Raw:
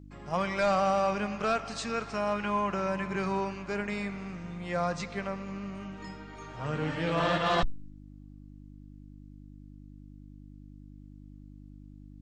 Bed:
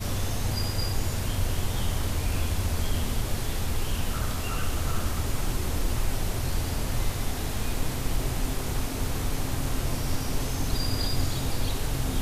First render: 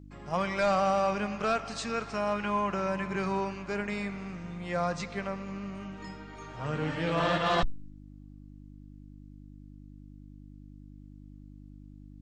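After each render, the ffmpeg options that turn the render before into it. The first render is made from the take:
-af anull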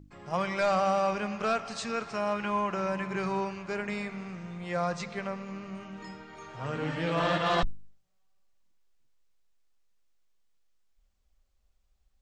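-af "bandreject=f=50:t=h:w=4,bandreject=f=100:t=h:w=4,bandreject=f=150:t=h:w=4,bandreject=f=200:t=h:w=4,bandreject=f=250:t=h:w=4,bandreject=f=300:t=h:w=4"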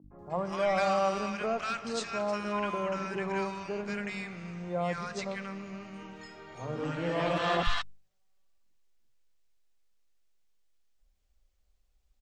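-filter_complex "[0:a]acrossover=split=150|1100[a][b][c];[a]adelay=40[d];[c]adelay=190[e];[d][b][e]amix=inputs=3:normalize=0"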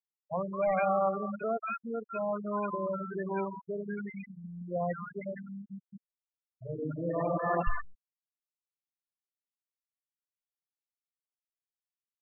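-af "lowpass=3.4k,afftfilt=real='re*gte(hypot(re,im),0.0708)':imag='im*gte(hypot(re,im),0.0708)':win_size=1024:overlap=0.75"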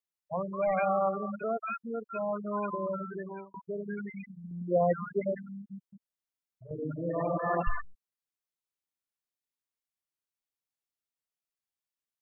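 -filter_complex "[0:a]asettb=1/sr,asplit=3[a][b][c];[a]atrim=end=4.514[d];[b]atrim=start=4.51:end=5.35,asetpts=PTS-STARTPTS,afade=t=in:d=0.004:c=qsin,afade=t=out:st=0.836:d=0.004:c=qsin,equalizer=f=390:t=o:w=1.8:g=10.5[e];[c]atrim=start=5.346[f];[d][e]acrossfade=d=0.004:c1=hsin:c2=qsin[g];[g][f]acrossfade=d=0.004:c1=qsin:c2=hsin,asettb=1/sr,asplit=3[h][i][j];[h]atrim=end=5.874[k];[i]atrim=start=5.87:end=6.71,asetpts=PTS-STARTPTS,afade=t=in:d=0.004:c=qsin,afade=t=out:st=0.836:d=0.004:c=qsin,acompressor=threshold=-52dB:ratio=2:attack=3.2:release=140:knee=1:detection=peak[l];[j]atrim=start=6.706[m];[k][l]acrossfade=d=0.004:c1=hsin:c2=qsin[n];[n][m]acrossfade=d=0.004:c1=qsin:c2=hsin,asplit=2[o][p];[o]atrim=end=3.54,asetpts=PTS-STARTPTS,afade=t=out:st=3.04:d=0.5[q];[p]atrim=start=3.54,asetpts=PTS-STARTPTS,afade=t=in:d=0.004:c=hsin[r];[q][r]concat=n=2:v=0:a=1"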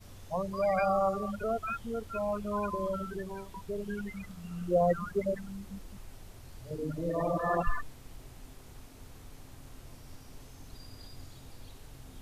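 -filter_complex "[1:a]volume=-21.5dB[a];[0:a][a]amix=inputs=2:normalize=0"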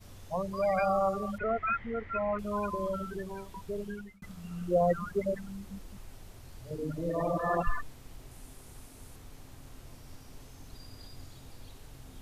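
-filter_complex "[0:a]asettb=1/sr,asplit=3[a][b][c];[a]atrim=end=1.384[d];[b]atrim=start=1.38:end=2.39,asetpts=PTS-STARTPTS,afade=t=in:d=0.004:c=qsin,afade=t=out:st=1.006:d=0.004:c=qsin,lowpass=f=2k:t=q:w=11[e];[c]atrim=start=2.386[f];[d][e]acrossfade=d=0.004:c1=hsin:c2=qsin[g];[g][f]acrossfade=d=0.004:c1=qsin:c2=hsin,asettb=1/sr,asplit=3[h][i][j];[h]atrim=end=8.314[k];[i]atrim=start=8.31:end=9.16,asetpts=PTS-STARTPTS,afade=t=in:d=0.004:c=qsin,afade=t=out:st=0.846:d=0.004:c=qsin,equalizer=f=9.7k:t=o:w=0.72:g=8[l];[j]atrim=start=9.156[m];[k][l]acrossfade=d=0.004:c1=hsin:c2=qsin[n];[n][m]acrossfade=d=0.004:c1=qsin:c2=hsin,asplit=2[o][p];[o]atrim=end=4.22,asetpts=PTS-STARTPTS,afade=t=out:st=3.81:d=0.41[q];[p]atrim=start=4.22,asetpts=PTS-STARTPTS,afade=t=in:d=0.004:c=hsin[r];[q][r]concat=n=2:v=0:a=1"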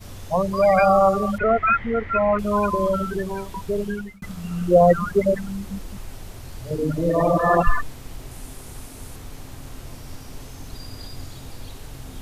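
-af "volume=12dB"

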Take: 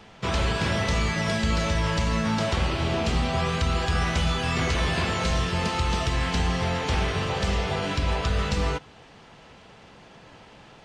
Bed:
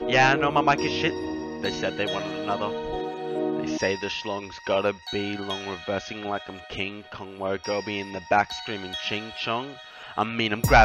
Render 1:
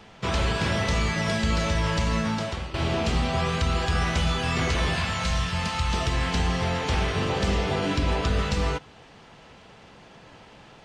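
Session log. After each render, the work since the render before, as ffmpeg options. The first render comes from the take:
-filter_complex "[0:a]asettb=1/sr,asplit=3[a][b][c];[a]atrim=end=4.964[d];[b]atrim=start=4.96:end=5.94,asetpts=PTS-STARTPTS,afade=t=in:d=0.004:c=qsin,afade=t=out:st=0.976:d=0.004:c=qsin,equalizer=f=380:w=1.5:g=-13.5[e];[c]atrim=start=5.936[f];[d][e]acrossfade=d=0.004:c1=hsin:c2=qsin[g];[g][f]acrossfade=d=0.004:c1=qsin:c2=hsin,asettb=1/sr,asplit=3[h][i][j];[h]atrim=end=7.174[k];[i]atrim=start=7.17:end=8.41,asetpts=PTS-STARTPTS,afade=t=in:d=0.004:c=qsin,afade=t=out:st=1.236:d=0.004:c=qsin,equalizer=f=290:w=1.5:g=7[l];[j]atrim=start=8.406[m];[k][l]acrossfade=d=0.004:c1=hsin:c2=qsin[n];[n][m]acrossfade=d=0.004:c1=qsin:c2=hsin,asplit=2[o][p];[o]atrim=end=2.74,asetpts=PTS-STARTPTS,afade=t=out:st=2.18:d=0.56:silence=0.199526[q];[p]atrim=start=2.74,asetpts=PTS-STARTPTS,afade=t=in:d=0.004:c=hsin:silence=0.199526[r];[q][r]concat=n=2:v=0:a=1"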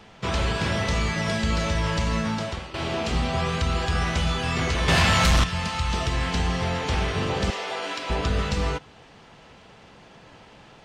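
-filter_complex "[0:a]asettb=1/sr,asplit=3[a][b][c];[a]atrim=end=2.594[d];[b]atrim=start=2.59:end=3.11,asetpts=PTS-STARTPTS,afade=t=in:d=0.004:c=qsin,afade=t=out:st=0.516:d=0.004:c=qsin,lowshelf=f=140:g=-9.5[e];[c]atrim=start=3.106[f];[d][e]acrossfade=d=0.004:c1=hsin:c2=qsin[g];[g][f]acrossfade=d=0.004:c1=qsin:c2=hsin,asettb=1/sr,asplit=3[h][i][j];[h]atrim=end=4.884[k];[i]atrim=start=4.88:end=5.44,asetpts=PTS-STARTPTS,afade=t=in:d=0.004:c=qsin,afade=t=out:st=0.556:d=0.004:c=qsin,aeval=exprs='0.188*sin(PI/2*2.24*val(0)/0.188)':c=same[l];[j]atrim=start=5.436[m];[k][l]acrossfade=d=0.004:c1=hsin:c2=qsin[n];[n][m]acrossfade=d=0.004:c1=qsin:c2=hsin,asettb=1/sr,asplit=3[o][p][q];[o]atrim=end=7.504[r];[p]atrim=start=7.5:end=8.1,asetpts=PTS-STARTPTS,afade=t=in:d=0.004:c=qsin,afade=t=out:st=0.596:d=0.004:c=qsin,highpass=600[s];[q]atrim=start=8.096[t];[r][s]acrossfade=d=0.004:c1=hsin:c2=qsin[u];[u][t]acrossfade=d=0.004:c1=qsin:c2=hsin"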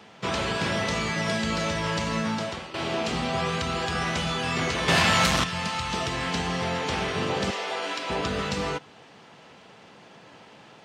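-af "highpass=150"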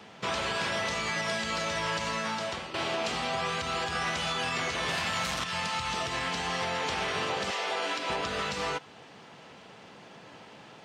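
-filter_complex "[0:a]acrossover=split=510[a][b];[a]acompressor=threshold=-39dB:ratio=10[c];[b]alimiter=limit=-22dB:level=0:latency=1:release=89[d];[c][d]amix=inputs=2:normalize=0"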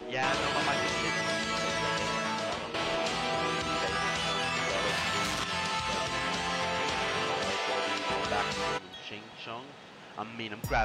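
-filter_complex "[1:a]volume=-13dB[a];[0:a][a]amix=inputs=2:normalize=0"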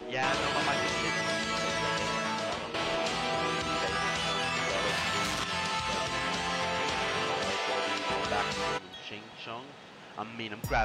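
-af anull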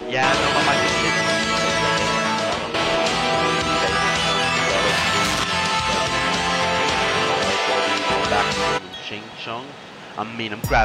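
-af "volume=11dB"

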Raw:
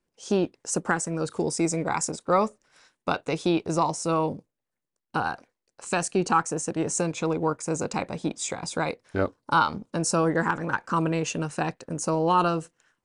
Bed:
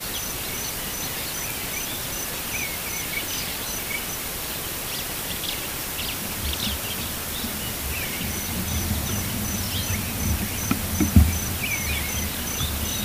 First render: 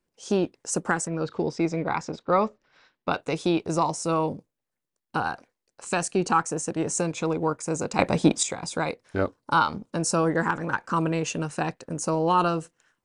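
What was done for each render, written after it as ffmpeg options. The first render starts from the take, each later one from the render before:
-filter_complex "[0:a]asettb=1/sr,asplit=3[a][b][c];[a]atrim=end=1.074[d];[b]atrim=start=1.07:end=3.13,asetpts=PTS-STARTPTS,afade=t=in:d=0.004:c=qsin,afade=t=out:st=2.056:d=0.004:c=qsin,lowpass=f=4.5k:w=0.5412,lowpass=f=4.5k:w=1.3066[e];[c]atrim=start=3.126[f];[d][e]acrossfade=d=0.004:c1=hsin:c2=qsin[g];[g][f]acrossfade=d=0.004:c1=qsin:c2=hsin,asplit=3[h][i][j];[h]atrim=end=7.992[k];[i]atrim=start=7.988:end=8.432,asetpts=PTS-STARTPTS,volume=9.5dB[l];[j]atrim=start=8.428[m];[k][l]acrossfade=d=0.004:c1=hsin:c2=hsin[n];[n][m]acrossfade=d=0.004:c1=hsin:c2=hsin"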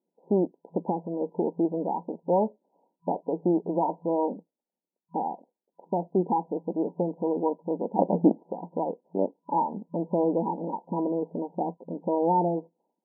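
-af "afftfilt=real='re*between(b*sr/4096,170,990)':imag='im*between(b*sr/4096,170,990)':win_size=4096:overlap=0.75"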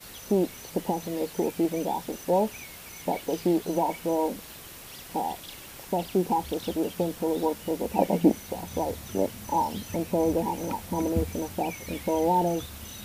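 -filter_complex "[1:a]volume=-14.5dB[a];[0:a][a]amix=inputs=2:normalize=0"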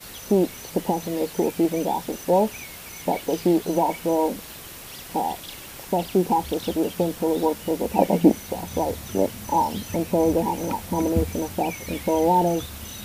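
-af "volume=4.5dB"

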